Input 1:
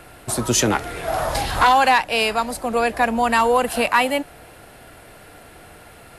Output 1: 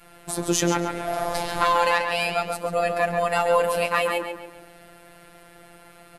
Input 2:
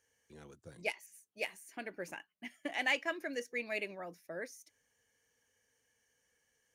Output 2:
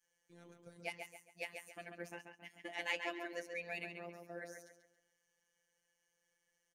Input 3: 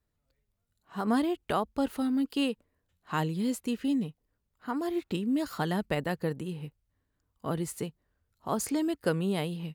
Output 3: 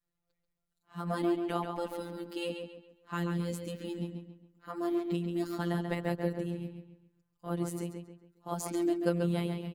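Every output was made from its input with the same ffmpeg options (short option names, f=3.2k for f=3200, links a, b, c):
-filter_complex "[0:a]adynamicequalizer=threshold=0.0251:dfrequency=340:dqfactor=0.71:tfrequency=340:tqfactor=0.71:attack=5:release=100:ratio=0.375:range=2:mode=boostabove:tftype=bell,asplit=2[a][b];[b]adelay=137,lowpass=f=4.4k:p=1,volume=-5.5dB,asplit=2[c][d];[d]adelay=137,lowpass=f=4.4k:p=1,volume=0.38,asplit=2[e][f];[f]adelay=137,lowpass=f=4.4k:p=1,volume=0.38,asplit=2[g][h];[h]adelay=137,lowpass=f=4.4k:p=1,volume=0.38,asplit=2[i][j];[j]adelay=137,lowpass=f=4.4k:p=1,volume=0.38[k];[a][c][e][g][i][k]amix=inputs=6:normalize=0,afftfilt=real='hypot(re,im)*cos(PI*b)':imag='0':win_size=1024:overlap=0.75,volume=-2.5dB"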